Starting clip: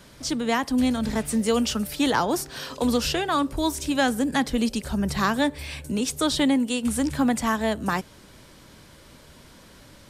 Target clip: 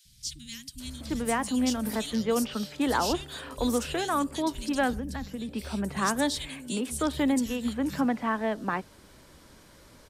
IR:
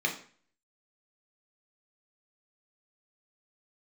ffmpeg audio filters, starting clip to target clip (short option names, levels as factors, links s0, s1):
-filter_complex "[0:a]acrossover=split=150|3000[s0][s1][s2];[s0]adelay=50[s3];[s1]adelay=800[s4];[s3][s4][s2]amix=inputs=3:normalize=0,asettb=1/sr,asplit=3[s5][s6][s7];[s5]atrim=end=4.934[s8];[s6]atrim=start=4.93:end=5.49,asetpts=PTS-STARTPTS,afade=t=in:d=0.004:c=qsin,afade=t=out:st=0.556:d=0.004:c=qsin,acrossover=split=160[s9][s10];[s10]acompressor=threshold=0.0251:ratio=8[s11];[s9][s11]amix=inputs=2:normalize=0[s12];[s7]atrim=start=5.486[s13];[s8][s12]acrossfade=d=0.004:c1=hsin:c2=qsin[s14];[s14][s13]acrossfade=d=0.004:c1=qsin:c2=hsin,volume=0.668"